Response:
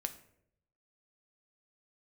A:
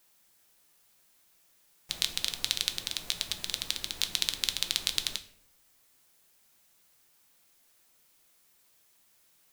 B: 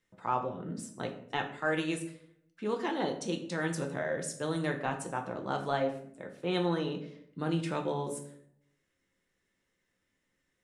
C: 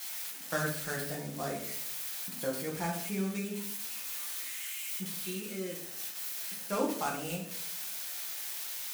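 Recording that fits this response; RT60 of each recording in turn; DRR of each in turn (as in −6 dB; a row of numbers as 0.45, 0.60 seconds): A; 0.70, 0.70, 0.70 seconds; 7.5, 2.5, −3.5 decibels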